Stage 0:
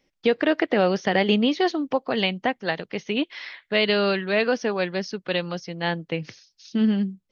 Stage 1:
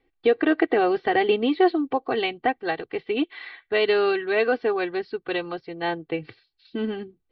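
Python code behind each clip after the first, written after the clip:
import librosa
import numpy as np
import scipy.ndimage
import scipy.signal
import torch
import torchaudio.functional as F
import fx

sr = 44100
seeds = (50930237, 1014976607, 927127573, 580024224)

y = scipy.signal.sosfilt(scipy.signal.ellip(4, 1.0, 40, 4300.0, 'lowpass', fs=sr, output='sos'), x)
y = fx.high_shelf(y, sr, hz=2500.0, db=-10.0)
y = y + 0.87 * np.pad(y, (int(2.6 * sr / 1000.0), 0))[:len(y)]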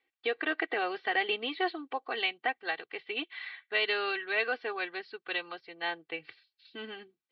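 y = fx.bandpass_q(x, sr, hz=2700.0, q=0.7)
y = F.gain(torch.from_numpy(y), -1.5).numpy()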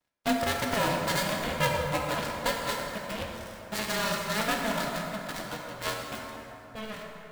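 y = fx.dead_time(x, sr, dead_ms=0.23)
y = y * np.sin(2.0 * np.pi * 220.0 * np.arange(len(y)) / sr)
y = fx.rev_plate(y, sr, seeds[0], rt60_s=3.3, hf_ratio=0.5, predelay_ms=0, drr_db=-0.5)
y = F.gain(torch.from_numpy(y), 7.5).numpy()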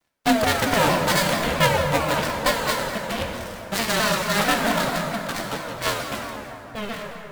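y = fx.vibrato_shape(x, sr, shape='saw_down', rate_hz=4.5, depth_cents=160.0)
y = F.gain(torch.from_numpy(y), 8.0).numpy()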